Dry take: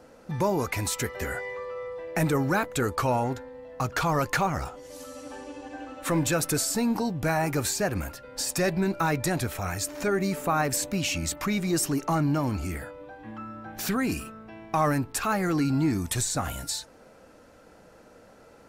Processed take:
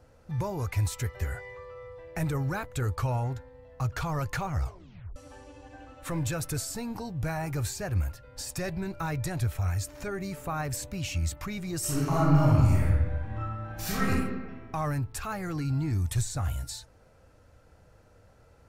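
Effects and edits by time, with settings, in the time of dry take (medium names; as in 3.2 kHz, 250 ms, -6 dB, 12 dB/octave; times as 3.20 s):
4.62 s: tape stop 0.54 s
11.79–14.09 s: reverb throw, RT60 1.4 s, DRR -8 dB
whole clip: resonant low shelf 150 Hz +12.5 dB, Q 1.5; trim -8 dB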